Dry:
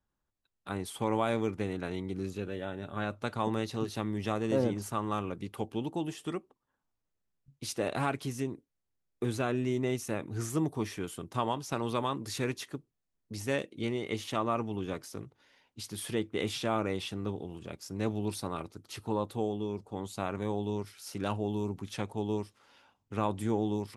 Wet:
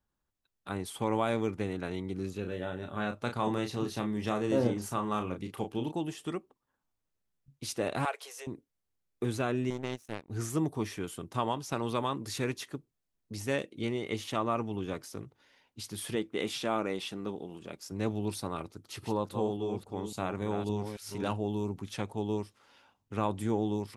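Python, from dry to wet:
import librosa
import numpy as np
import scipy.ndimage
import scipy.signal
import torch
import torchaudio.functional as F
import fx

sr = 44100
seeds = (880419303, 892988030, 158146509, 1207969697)

y = fx.doubler(x, sr, ms=33.0, db=-6.5, at=(2.43, 5.91), fade=0.02)
y = fx.cheby1_highpass(y, sr, hz=460.0, order=5, at=(8.05, 8.47))
y = fx.power_curve(y, sr, exponent=2.0, at=(9.7, 10.3))
y = fx.peak_eq(y, sr, hz=92.0, db=-14.5, octaves=0.77, at=(16.15, 17.92))
y = fx.reverse_delay(y, sr, ms=280, wet_db=-7, at=(18.73, 21.33))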